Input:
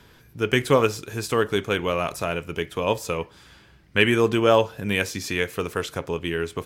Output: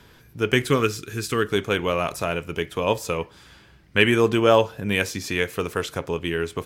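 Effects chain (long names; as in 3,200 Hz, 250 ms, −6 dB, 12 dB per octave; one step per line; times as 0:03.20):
0:00.67–0:01.52: flat-topped bell 710 Hz −10.5 dB 1.2 octaves
0:04.11–0:05.45: one half of a high-frequency compander decoder only
level +1 dB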